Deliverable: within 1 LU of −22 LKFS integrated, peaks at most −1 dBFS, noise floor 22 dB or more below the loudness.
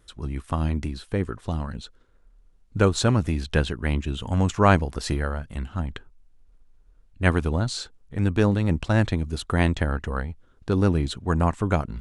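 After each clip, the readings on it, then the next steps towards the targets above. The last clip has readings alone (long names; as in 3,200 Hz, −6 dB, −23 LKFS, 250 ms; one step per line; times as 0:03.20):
integrated loudness −25.0 LKFS; sample peak −2.0 dBFS; target loudness −22.0 LKFS
→ level +3 dB
brickwall limiter −1 dBFS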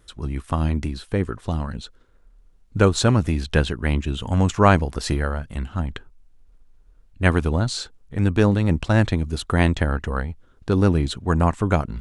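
integrated loudness −22.0 LKFS; sample peak −1.0 dBFS; background noise floor −54 dBFS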